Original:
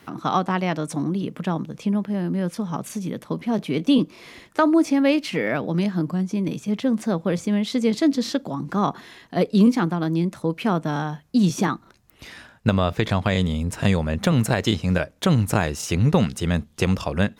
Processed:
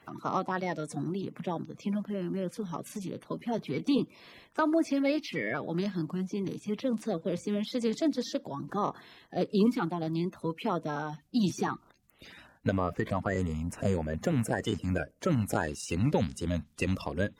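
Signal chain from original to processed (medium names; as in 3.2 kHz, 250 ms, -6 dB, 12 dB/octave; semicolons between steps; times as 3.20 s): coarse spectral quantiser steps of 30 dB; 12.72–15.41 s: peaking EQ 3.8 kHz -11 dB 0.59 oct; trim -8.5 dB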